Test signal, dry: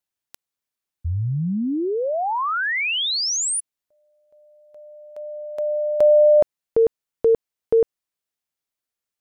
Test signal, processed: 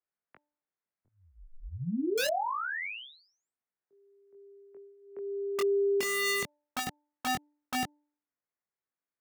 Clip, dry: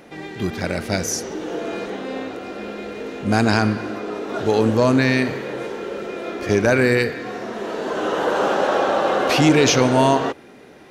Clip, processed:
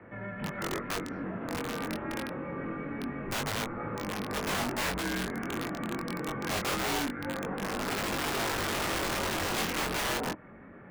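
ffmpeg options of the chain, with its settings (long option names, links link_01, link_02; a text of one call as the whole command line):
ffmpeg -i in.wav -filter_complex "[0:a]highpass=frequency=330:width_type=q:width=0.5412,highpass=frequency=330:width_type=q:width=1.307,lowpass=frequency=2300:width_type=q:width=0.5176,lowpass=frequency=2300:width_type=q:width=0.7071,lowpass=frequency=2300:width_type=q:width=1.932,afreqshift=-200,acrossover=split=210|630[link_01][link_02][link_03];[link_01]acompressor=threshold=-40dB:ratio=3[link_04];[link_02]acompressor=threshold=-32dB:ratio=2[link_05];[link_03]acompressor=threshold=-32dB:ratio=6[link_06];[link_04][link_05][link_06]amix=inputs=3:normalize=0,aeval=exprs='(mod(14.1*val(0)+1,2)-1)/14.1':channel_layout=same,flanger=delay=20:depth=2.7:speed=0.25,bandreject=frequency=295.1:width_type=h:width=4,bandreject=frequency=590.2:width_type=h:width=4,bandreject=frequency=885.3:width_type=h:width=4" out.wav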